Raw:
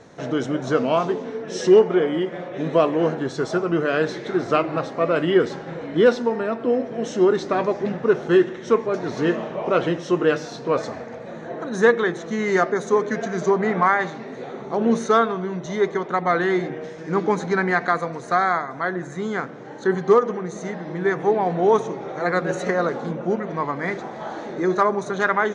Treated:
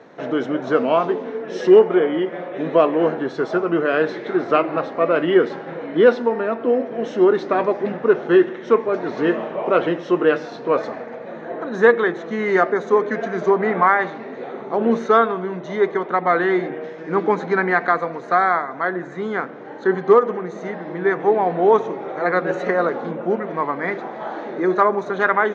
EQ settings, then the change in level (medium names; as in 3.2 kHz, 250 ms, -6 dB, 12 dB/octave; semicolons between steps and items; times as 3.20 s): band-pass 230–2900 Hz; +3.0 dB